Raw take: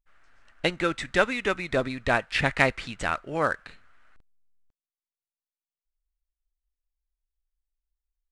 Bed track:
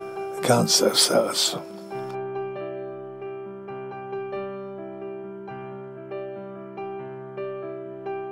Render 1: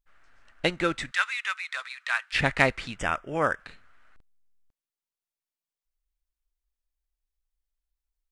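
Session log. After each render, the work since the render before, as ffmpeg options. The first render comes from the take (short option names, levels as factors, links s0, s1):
-filter_complex "[0:a]asplit=3[s0][s1][s2];[s0]afade=t=out:st=1.1:d=0.02[s3];[s1]highpass=f=1200:w=0.5412,highpass=f=1200:w=1.3066,afade=t=in:st=1.1:d=0.02,afade=t=out:st=2.32:d=0.02[s4];[s2]afade=t=in:st=2.32:d=0.02[s5];[s3][s4][s5]amix=inputs=3:normalize=0,asettb=1/sr,asplit=3[s6][s7][s8];[s6]atrim=end=2.984[s9];[s7]atrim=start=2.98:end=3.6,asetpts=PTS-STARTPTS,afade=t=in:d=0.004:c=qsin,afade=t=out:st=0.616:d=0.004:c=qsin,asuperstop=centerf=4200:order=8:qfactor=3.4[s10];[s8]atrim=start=3.596[s11];[s9][s10]acrossfade=d=0.004:c1=hsin:c2=qsin[s12];[s12][s11]acrossfade=d=0.004:c1=qsin:c2=hsin"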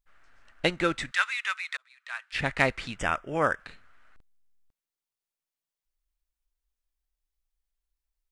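-filter_complex "[0:a]asplit=2[s0][s1];[s0]atrim=end=1.77,asetpts=PTS-STARTPTS,afade=t=out:st=1.766:d=0.004:c=hsin[s2];[s1]atrim=start=1.77,asetpts=PTS-STARTPTS,afade=t=in:d=1.12[s3];[s2][s3]concat=n=2:v=0:a=1"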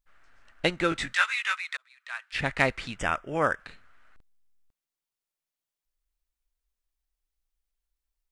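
-filter_complex "[0:a]asettb=1/sr,asplit=3[s0][s1][s2];[s0]atrim=end=0.904[s3];[s1]atrim=start=0.9:end=1.59,asetpts=PTS-STARTPTS,afade=t=in:d=0.004:c=qsin,afade=t=out:st=0.686:d=0.004:c=qsin,asplit=2[s4][s5];[s5]adelay=18,volume=0.794[s6];[s4][s6]amix=inputs=2:normalize=0,atrim=end_sample=30429[s7];[s2]atrim=start=1.586[s8];[s3][s7]acrossfade=d=0.004:c1=hsin:c2=qsin[s9];[s9][s8]acrossfade=d=0.004:c1=qsin:c2=hsin"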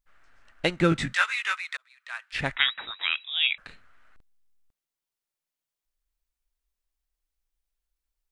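-filter_complex "[0:a]asettb=1/sr,asplit=3[s0][s1][s2];[s0]atrim=end=0.804[s3];[s1]atrim=start=0.8:end=1.63,asetpts=PTS-STARTPTS,afade=t=in:d=0.004:c=qsin,afade=t=out:st=0.826:d=0.004:c=qsin,equalizer=f=160:t=o:w=1.8:g=12.5[s4];[s2]atrim=start=1.626[s5];[s3][s4]acrossfade=d=0.004:c1=hsin:c2=qsin[s6];[s6][s5]acrossfade=d=0.004:c1=qsin:c2=hsin,asettb=1/sr,asplit=3[s7][s8][s9];[s7]atrim=end=2.564[s10];[s8]atrim=start=2.56:end=3.58,asetpts=PTS-STARTPTS,afade=t=in:d=0.004:c=qsin,afade=t=out:st=1.016:d=0.004:c=qsin,lowpass=f=3300:t=q:w=0.5098,lowpass=f=3300:t=q:w=0.6013,lowpass=f=3300:t=q:w=0.9,lowpass=f=3300:t=q:w=2.563,afreqshift=-3900[s11];[s9]atrim=start=3.576[s12];[s10][s11]acrossfade=d=0.004:c1=hsin:c2=qsin[s13];[s13][s12]acrossfade=d=0.004:c1=qsin:c2=hsin"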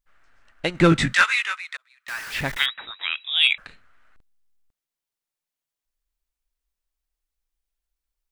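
-filter_complex "[0:a]asplit=3[s0][s1][s2];[s0]afade=t=out:st=0.74:d=0.02[s3];[s1]aeval=exprs='0.422*sin(PI/2*1.58*val(0)/0.422)':c=same,afade=t=in:st=0.74:d=0.02,afade=t=out:st=1.44:d=0.02[s4];[s2]afade=t=in:st=1.44:d=0.02[s5];[s3][s4][s5]amix=inputs=3:normalize=0,asettb=1/sr,asplit=3[s6][s7][s8];[s6]atrim=end=2.084[s9];[s7]atrim=start=2.08:end=2.66,asetpts=PTS-STARTPTS,afade=t=in:d=0.004:c=qsin,afade=t=out:st=0.576:d=0.004:c=qsin,aeval=exprs='val(0)+0.5*0.0316*sgn(val(0))':c=same[s10];[s8]atrim=start=2.656[s11];[s9][s10]acrossfade=d=0.004:c1=hsin:c2=qsin[s12];[s12][s11]acrossfade=d=0.004:c1=qsin:c2=hsin,asplit=3[s13][s14][s15];[s13]afade=t=out:st=3.24:d=0.02[s16];[s14]acontrast=71,afade=t=in:st=3.24:d=0.02,afade=t=out:st=3.65:d=0.02[s17];[s15]afade=t=in:st=3.65:d=0.02[s18];[s16][s17][s18]amix=inputs=3:normalize=0"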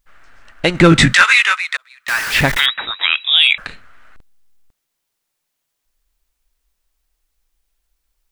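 -af "alimiter=level_in=4.73:limit=0.891:release=50:level=0:latency=1"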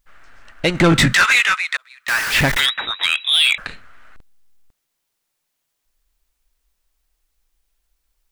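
-af "asoftclip=type=tanh:threshold=0.398"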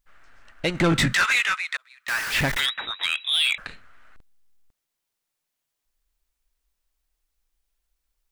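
-af "volume=0.447"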